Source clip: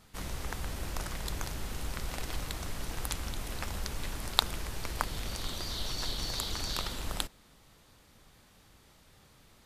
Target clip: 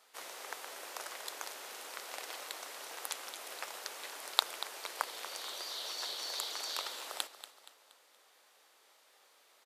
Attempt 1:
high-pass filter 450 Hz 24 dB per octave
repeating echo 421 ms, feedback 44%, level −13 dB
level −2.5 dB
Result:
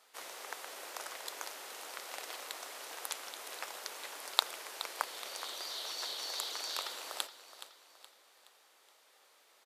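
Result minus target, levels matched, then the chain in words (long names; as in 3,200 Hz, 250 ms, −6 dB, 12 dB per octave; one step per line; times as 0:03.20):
echo 185 ms late
high-pass filter 450 Hz 24 dB per octave
repeating echo 236 ms, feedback 44%, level −13 dB
level −2.5 dB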